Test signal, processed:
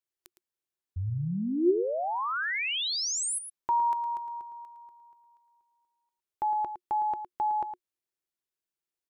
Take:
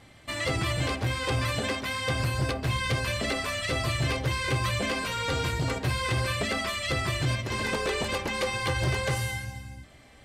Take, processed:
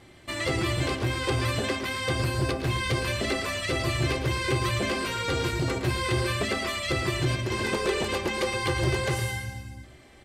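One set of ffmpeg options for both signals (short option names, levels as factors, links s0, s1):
-af "equalizer=f=360:t=o:w=0.24:g=12,aecho=1:1:111:0.299"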